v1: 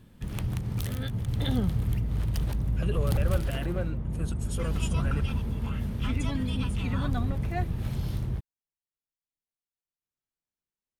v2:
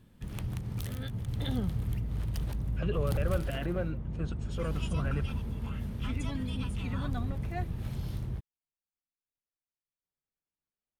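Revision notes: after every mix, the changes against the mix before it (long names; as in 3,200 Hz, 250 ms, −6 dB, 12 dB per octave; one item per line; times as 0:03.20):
speech: add Gaussian smoothing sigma 1.7 samples
background −5.0 dB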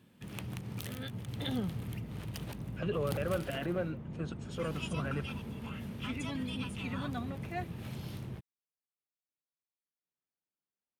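background: add parametric band 2,600 Hz +4 dB 0.63 octaves
master: add high-pass filter 150 Hz 12 dB per octave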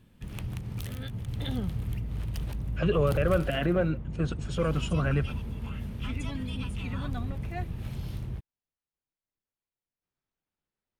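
speech +8.0 dB
master: remove high-pass filter 150 Hz 12 dB per octave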